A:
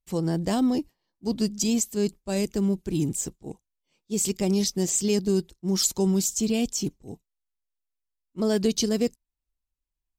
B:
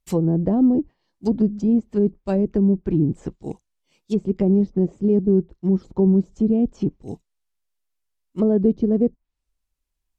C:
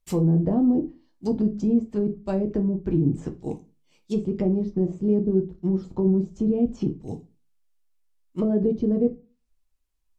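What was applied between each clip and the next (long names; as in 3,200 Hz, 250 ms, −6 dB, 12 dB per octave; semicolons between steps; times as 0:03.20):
treble cut that deepens with the level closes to 490 Hz, closed at −22 dBFS; level +7 dB
in parallel at +2 dB: brickwall limiter −16.5 dBFS, peak gain reduction 8.5 dB; on the sum: convolution reverb RT60 0.30 s, pre-delay 7 ms, DRR 5 dB; level −8.5 dB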